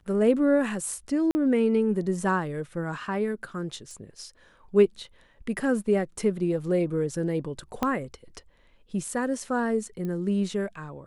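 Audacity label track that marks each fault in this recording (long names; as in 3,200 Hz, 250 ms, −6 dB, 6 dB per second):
1.310000	1.350000	drop-out 40 ms
3.910000	3.910000	click
7.830000	7.830000	click −12 dBFS
10.050000	10.050000	click −23 dBFS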